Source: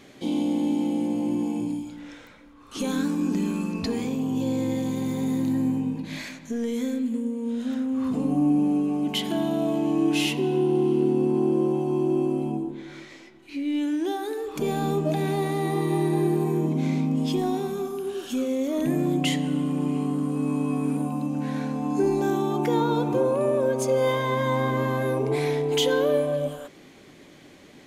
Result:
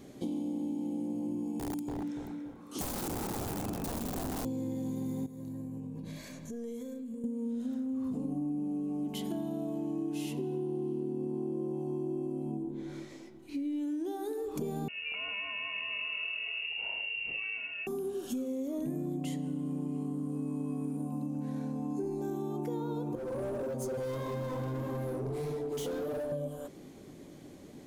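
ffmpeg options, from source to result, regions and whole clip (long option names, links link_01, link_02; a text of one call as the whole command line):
ffmpeg -i in.wav -filter_complex "[0:a]asettb=1/sr,asplit=3[link_01][link_02][link_03];[link_01]atrim=end=1.594[link_04];[link_02]atrim=start=1.59:end=4.45,asetpts=PTS-STARTPTS,afade=type=in:duration=0.004:curve=qsin,afade=type=out:start_time=2.856:duration=0.004:curve=qsin,highpass=180,aeval=exprs='(mod(15.8*val(0)+1,2)-1)/15.8':channel_layout=same,asplit=2[link_05][link_06];[link_06]adelay=287,lowpass=frequency=1300:poles=1,volume=-3.5dB,asplit=2[link_07][link_08];[link_08]adelay=287,lowpass=frequency=1300:poles=1,volume=0.37,asplit=2[link_09][link_10];[link_10]adelay=287,lowpass=frequency=1300:poles=1,volume=0.37,asplit=2[link_11][link_12];[link_12]adelay=287,lowpass=frequency=1300:poles=1,volume=0.37,asplit=2[link_13][link_14];[link_14]adelay=287,lowpass=frequency=1300:poles=1,volume=0.37[link_15];[link_05][link_07][link_09][link_11][link_13][link_15]amix=inputs=6:normalize=0,atrim=end_sample=126126[link_16];[link_03]atrim=start=4.446[link_17];[link_04][link_16]acrossfade=duration=0.004:curve1=hsin:curve2=qsin[link_18];[link_18][link_17]acrossfade=duration=0.004:curve1=qsin:curve2=hsin,asettb=1/sr,asplit=3[link_19][link_20][link_21];[link_19]atrim=end=5.264[link_22];[link_20]atrim=start=5.26:end=7.24,asetpts=PTS-STARTPTS,afade=type=in:duration=0.004:curve=qsin,afade=type=out:start_time=1.976:duration=0.004:curve=qsin,acompressor=threshold=-37dB:ratio=5:attack=3.2:release=140:knee=1:detection=peak,aecho=1:1:1.8:0.41,atrim=end_sample=87318[link_23];[link_21]atrim=start=7.236[link_24];[link_22][link_23]acrossfade=duration=0.004:curve1=hsin:curve2=qsin[link_25];[link_25][link_24]acrossfade=duration=0.004:curve1=qsin:curve2=hsin,asettb=1/sr,asplit=3[link_26][link_27][link_28];[link_26]atrim=end=14.884[link_29];[link_27]atrim=start=14.88:end=17.87,asetpts=PTS-STARTPTS,afade=type=in:duration=0.004:curve=qsin,afade=type=out:start_time=2.986:duration=0.004:curve=qsin,asplit=2[link_30][link_31];[link_31]adelay=35,volume=-12.5dB[link_32];[link_30][link_32]amix=inputs=2:normalize=0,atrim=end_sample=131859,lowpass=frequency=2600:width_type=q:width=0.5098,lowpass=frequency=2600:width_type=q:width=0.6013,lowpass=frequency=2600:width_type=q:width=0.9,lowpass=frequency=2600:width_type=q:width=2.563,afreqshift=-3000[link_33];[link_28]atrim=start=17.866[link_34];[link_29][link_33]acrossfade=duration=0.004:curve1=hsin:curve2=qsin[link_35];[link_35][link_34]acrossfade=duration=0.004:curve1=qsin:curve2=hsin,asettb=1/sr,asplit=3[link_36][link_37][link_38];[link_36]atrim=end=23.154[link_39];[link_37]atrim=start=23.15:end=26.32,asetpts=PTS-STARTPTS,afade=type=in:duration=0.004:curve=qsin,afade=type=out:start_time=3.166:duration=0.004:curve=qsin,flanger=delay=16.5:depth=7.1:speed=1.6,volume=27.5dB,asoftclip=hard,volume=-27.5dB[link_40];[link_38]atrim=start=26.316[link_41];[link_39][link_40]acrossfade=duration=0.004:curve1=hsin:curve2=qsin[link_42];[link_42][link_41]acrossfade=duration=0.004:curve1=qsin:curve2=hsin,equalizer=frequency=2300:width=0.43:gain=-13.5,acompressor=threshold=-35dB:ratio=6,volume=2dB" out.wav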